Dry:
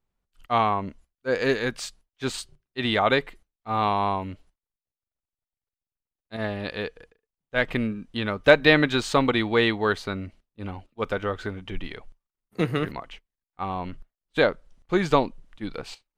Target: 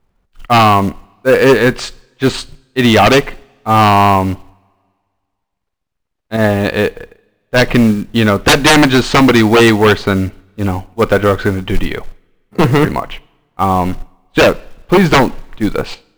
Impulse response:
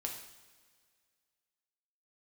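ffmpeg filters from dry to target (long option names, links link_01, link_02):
-filter_complex "[0:a]aemphasis=mode=reproduction:type=75fm,aeval=exprs='0.75*sin(PI/2*5.62*val(0)/0.75)':channel_layout=same,acrusher=bits=6:mode=log:mix=0:aa=0.000001,asplit=2[link_01][link_02];[1:a]atrim=start_sample=2205,asetrate=48510,aresample=44100,adelay=37[link_03];[link_02][link_03]afir=irnorm=-1:irlink=0,volume=-20dB[link_04];[link_01][link_04]amix=inputs=2:normalize=0,volume=-1dB"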